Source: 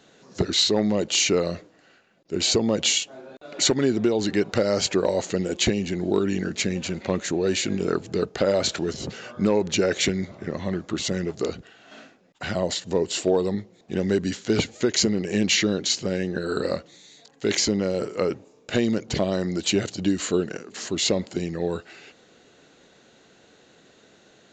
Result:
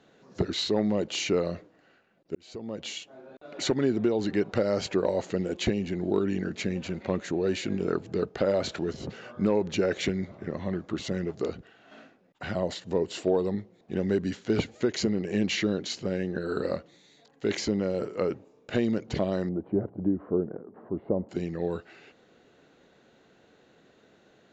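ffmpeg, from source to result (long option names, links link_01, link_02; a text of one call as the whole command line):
ffmpeg -i in.wav -filter_complex "[0:a]asettb=1/sr,asplit=3[link_01][link_02][link_03];[link_01]atrim=end=19.494[link_04];[link_02]atrim=start=19.49:end=21.29,asetpts=PTS-STARTPTS,afade=type=in:duration=0.004:curve=qsin,afade=type=out:start_time=1.796:duration=0.004:curve=qsin,lowpass=frequency=1000:width=0.5412,lowpass=frequency=1000:width=1.3066[link_05];[link_03]atrim=start=21.286[link_06];[link_04][link_05]acrossfade=duration=0.004:curve1=hsin:curve2=qsin[link_07];[link_07][link_06]acrossfade=duration=0.004:curve1=qsin:curve2=hsin,asplit=2[link_08][link_09];[link_08]atrim=end=2.35,asetpts=PTS-STARTPTS,afade=type=out:start_time=2.346:duration=0.004:curve=hsin[link_10];[link_09]atrim=start=2.35,asetpts=PTS-STARTPTS,afade=type=in:duration=1.11[link_11];[link_10][link_11]concat=n=2:v=0:a=1,aemphasis=mode=reproduction:type=75kf,volume=-3.5dB" out.wav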